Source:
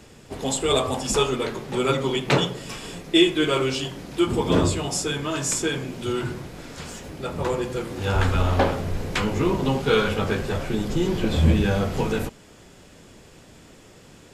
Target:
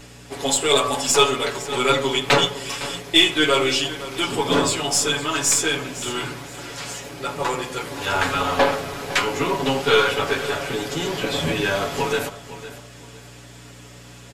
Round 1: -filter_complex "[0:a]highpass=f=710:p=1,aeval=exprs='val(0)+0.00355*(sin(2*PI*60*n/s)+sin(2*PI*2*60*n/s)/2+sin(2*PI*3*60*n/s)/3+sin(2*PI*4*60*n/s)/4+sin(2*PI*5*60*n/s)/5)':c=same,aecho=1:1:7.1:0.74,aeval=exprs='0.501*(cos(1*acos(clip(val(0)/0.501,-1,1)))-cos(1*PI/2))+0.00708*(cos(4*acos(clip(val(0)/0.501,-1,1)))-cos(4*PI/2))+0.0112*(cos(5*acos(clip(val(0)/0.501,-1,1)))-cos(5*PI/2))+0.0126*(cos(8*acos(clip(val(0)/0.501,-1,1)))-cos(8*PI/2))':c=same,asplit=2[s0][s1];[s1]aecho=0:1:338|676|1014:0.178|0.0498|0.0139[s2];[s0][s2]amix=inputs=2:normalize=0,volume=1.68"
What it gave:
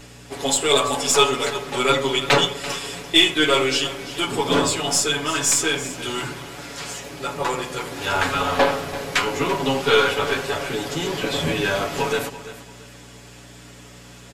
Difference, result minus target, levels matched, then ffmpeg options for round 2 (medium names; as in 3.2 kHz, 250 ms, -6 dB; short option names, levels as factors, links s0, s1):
echo 171 ms early
-filter_complex "[0:a]highpass=f=710:p=1,aeval=exprs='val(0)+0.00355*(sin(2*PI*60*n/s)+sin(2*PI*2*60*n/s)/2+sin(2*PI*3*60*n/s)/3+sin(2*PI*4*60*n/s)/4+sin(2*PI*5*60*n/s)/5)':c=same,aecho=1:1:7.1:0.74,aeval=exprs='0.501*(cos(1*acos(clip(val(0)/0.501,-1,1)))-cos(1*PI/2))+0.00708*(cos(4*acos(clip(val(0)/0.501,-1,1)))-cos(4*PI/2))+0.0112*(cos(5*acos(clip(val(0)/0.501,-1,1)))-cos(5*PI/2))+0.0126*(cos(8*acos(clip(val(0)/0.501,-1,1)))-cos(8*PI/2))':c=same,asplit=2[s0][s1];[s1]aecho=0:1:509|1018|1527:0.178|0.0498|0.0139[s2];[s0][s2]amix=inputs=2:normalize=0,volume=1.68"